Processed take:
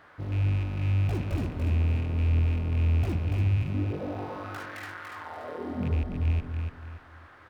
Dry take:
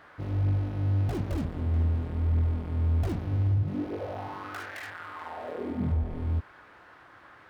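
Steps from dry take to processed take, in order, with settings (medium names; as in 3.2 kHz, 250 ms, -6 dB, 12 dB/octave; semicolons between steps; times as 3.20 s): rattle on loud lows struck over -26 dBFS, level -31 dBFS; peaking EQ 93 Hz +2.5 dB 0.77 oct; feedback delay 288 ms, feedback 31%, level -5 dB; trim -1.5 dB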